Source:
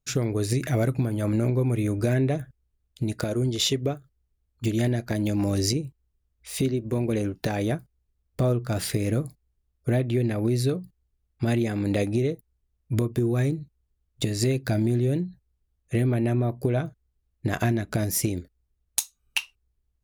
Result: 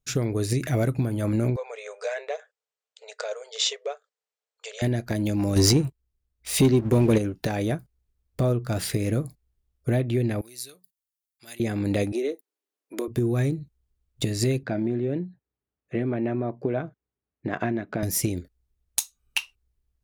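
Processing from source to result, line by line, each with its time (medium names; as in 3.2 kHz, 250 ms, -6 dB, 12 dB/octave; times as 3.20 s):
1.56–4.82 s: brick-wall FIR band-pass 420–8600 Hz
5.56–7.18 s: waveshaping leveller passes 2
10.41–11.60 s: differentiator
12.12–13.08 s: steep high-pass 290 Hz
14.63–18.03 s: band-pass 190–2200 Hz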